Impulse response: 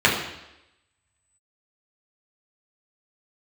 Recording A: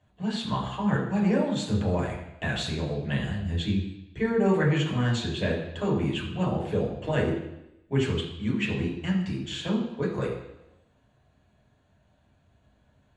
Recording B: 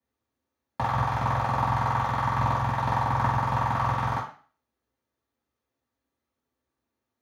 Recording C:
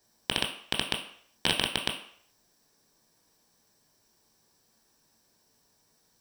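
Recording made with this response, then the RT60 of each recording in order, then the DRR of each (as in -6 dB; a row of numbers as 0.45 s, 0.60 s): A; 0.90 s, 0.40 s, 0.60 s; -4.5 dB, -11.0 dB, 2.5 dB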